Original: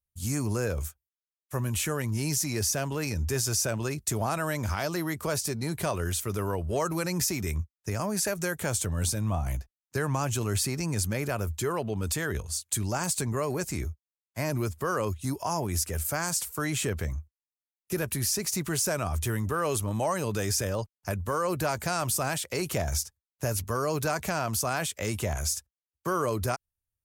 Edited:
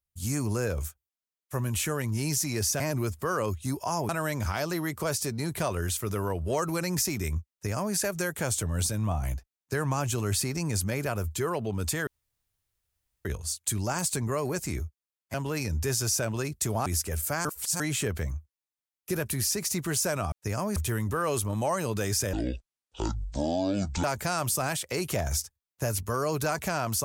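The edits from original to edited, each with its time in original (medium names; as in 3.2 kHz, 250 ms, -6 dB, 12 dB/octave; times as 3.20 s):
2.80–4.32 s: swap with 14.39–15.68 s
7.74–8.18 s: copy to 19.14 s
12.30 s: insert room tone 1.18 s
16.27–16.62 s: reverse
20.71–21.65 s: speed 55%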